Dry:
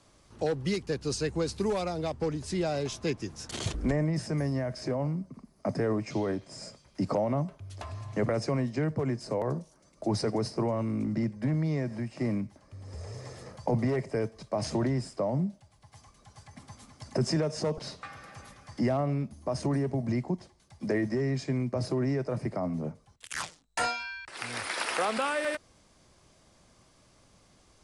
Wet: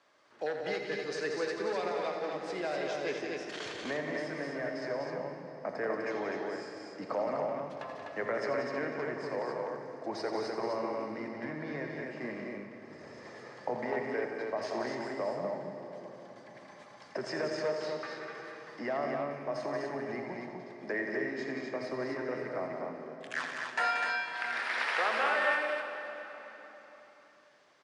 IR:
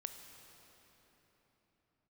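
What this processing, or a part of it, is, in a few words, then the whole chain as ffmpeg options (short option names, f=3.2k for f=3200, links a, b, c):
station announcement: -filter_complex "[0:a]highpass=430,lowpass=4k,equalizer=f=1.7k:t=o:w=0.55:g=7.5,aecho=1:1:84.55|180.8|250.7:0.355|0.447|0.631[a];[1:a]atrim=start_sample=2205[b];[a][b]afir=irnorm=-1:irlink=0"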